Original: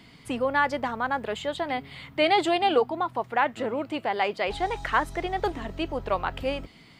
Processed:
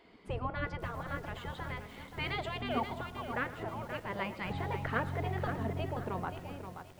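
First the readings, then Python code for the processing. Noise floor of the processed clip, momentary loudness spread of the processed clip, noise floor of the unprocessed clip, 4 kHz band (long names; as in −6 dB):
−53 dBFS, 8 LU, −52 dBFS, −12.5 dB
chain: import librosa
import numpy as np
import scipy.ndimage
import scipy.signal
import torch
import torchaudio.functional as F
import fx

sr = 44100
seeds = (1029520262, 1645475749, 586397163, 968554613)

p1 = fx.fade_out_tail(x, sr, length_s=1.28)
p2 = fx.tilt_eq(p1, sr, slope=-4.0)
p3 = fx.spec_gate(p2, sr, threshold_db=-10, keep='weak')
p4 = fx.high_shelf(p3, sr, hz=4600.0, db=-4.5)
p5 = fx.comb_fb(p4, sr, f0_hz=180.0, decay_s=1.4, harmonics='all', damping=0.0, mix_pct=50)
p6 = p5 + fx.echo_single(p5, sr, ms=112, db=-17.5, dry=0)
p7 = fx.echo_crushed(p6, sr, ms=528, feedback_pct=35, bits=9, wet_db=-8.0)
y = F.gain(torch.from_numpy(p7), 1.0).numpy()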